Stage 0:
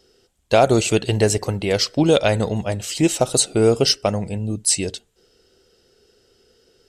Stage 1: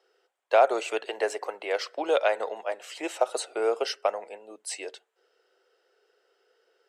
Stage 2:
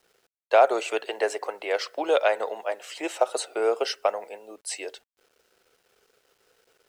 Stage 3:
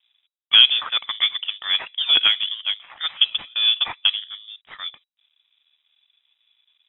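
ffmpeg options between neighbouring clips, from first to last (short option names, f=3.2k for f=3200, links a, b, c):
-filter_complex "[0:a]highpass=f=330:w=0.5412,highpass=f=330:w=1.3066,acrossover=split=510 2300:gain=0.0708 1 0.141[a][b][c];[a][b][c]amix=inputs=3:normalize=0,volume=-1.5dB"
-af "acrusher=bits=10:mix=0:aa=0.000001,volume=2dB"
-af "adynamicsmooth=sensitivity=6:basefreq=1.1k,lowpass=f=3.3k:t=q:w=0.5098,lowpass=f=3.3k:t=q:w=0.6013,lowpass=f=3.3k:t=q:w=0.9,lowpass=f=3.3k:t=q:w=2.563,afreqshift=-3900,volume=4.5dB"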